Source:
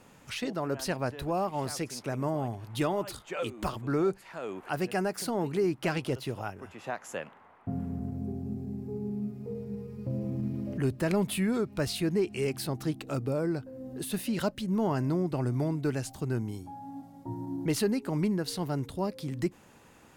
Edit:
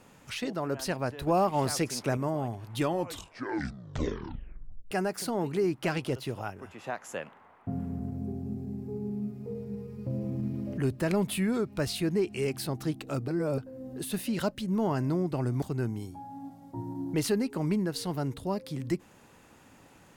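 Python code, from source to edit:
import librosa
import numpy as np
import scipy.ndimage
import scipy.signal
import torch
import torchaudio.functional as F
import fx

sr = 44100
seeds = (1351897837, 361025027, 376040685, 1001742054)

y = fx.edit(x, sr, fx.clip_gain(start_s=1.27, length_s=0.9, db=5.0),
    fx.tape_stop(start_s=2.77, length_s=2.14),
    fx.reverse_span(start_s=13.28, length_s=0.3),
    fx.cut(start_s=15.62, length_s=0.52), tone=tone)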